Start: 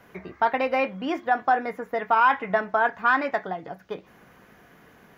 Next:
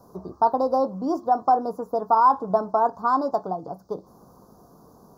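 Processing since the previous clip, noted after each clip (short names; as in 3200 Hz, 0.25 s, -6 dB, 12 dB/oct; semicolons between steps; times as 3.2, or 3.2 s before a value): elliptic band-stop 1100–4800 Hz, stop band 70 dB; gain +3.5 dB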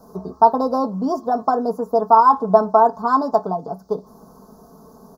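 comb 4.6 ms, depth 69%; gain +4 dB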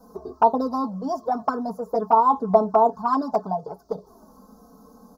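envelope flanger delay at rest 4.1 ms, full sweep at -10.5 dBFS; gain -1 dB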